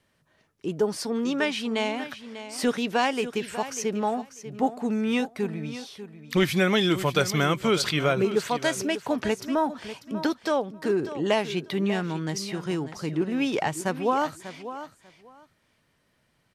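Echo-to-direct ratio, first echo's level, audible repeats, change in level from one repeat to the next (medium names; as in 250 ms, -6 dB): -12.5 dB, -12.5 dB, 2, -15.5 dB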